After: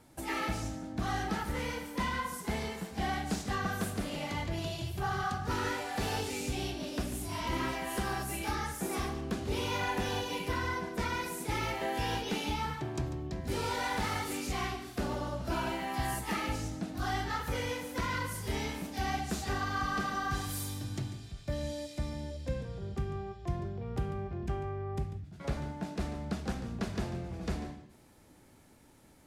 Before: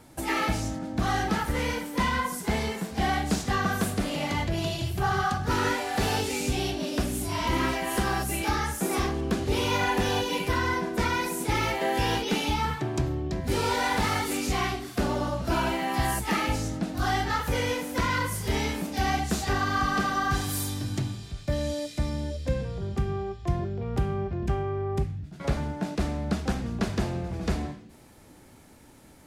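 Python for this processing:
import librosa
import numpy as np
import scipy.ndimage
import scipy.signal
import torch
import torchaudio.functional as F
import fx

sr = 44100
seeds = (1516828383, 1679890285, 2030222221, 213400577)

y = x + 10.0 ** (-12.5 / 20.0) * np.pad(x, (int(144 * sr / 1000.0), 0))[:len(x)]
y = F.gain(torch.from_numpy(y), -7.5).numpy()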